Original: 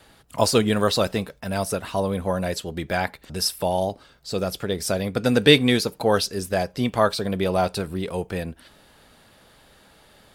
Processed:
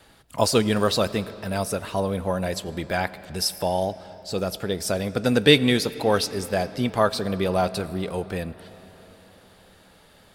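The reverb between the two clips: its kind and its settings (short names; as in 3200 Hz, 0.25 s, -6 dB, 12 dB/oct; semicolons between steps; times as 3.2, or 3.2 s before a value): digital reverb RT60 4.5 s, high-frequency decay 0.65×, pre-delay 50 ms, DRR 16 dB; gain -1 dB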